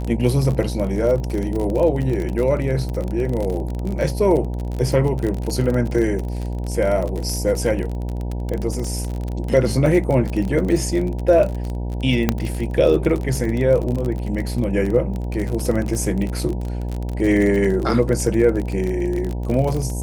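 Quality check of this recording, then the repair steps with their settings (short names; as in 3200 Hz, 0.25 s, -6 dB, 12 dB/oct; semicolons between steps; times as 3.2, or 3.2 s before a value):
buzz 60 Hz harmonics 16 -25 dBFS
crackle 33/s -23 dBFS
12.29 pop -3 dBFS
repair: de-click; de-hum 60 Hz, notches 16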